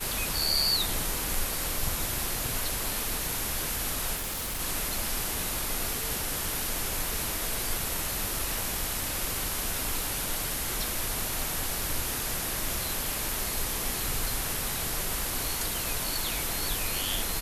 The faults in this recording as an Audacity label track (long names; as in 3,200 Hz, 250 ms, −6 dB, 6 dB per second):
4.150000	4.610000	clipping −30 dBFS